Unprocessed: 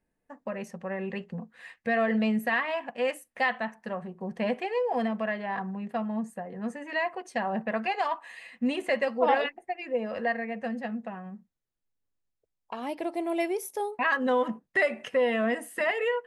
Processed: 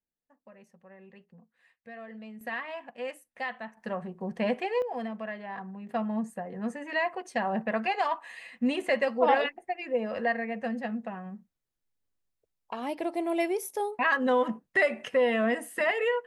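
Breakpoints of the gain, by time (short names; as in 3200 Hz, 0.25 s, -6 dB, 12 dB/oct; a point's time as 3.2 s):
-18.5 dB
from 2.41 s -8 dB
from 3.77 s +0.5 dB
from 4.82 s -6.5 dB
from 5.89 s +0.5 dB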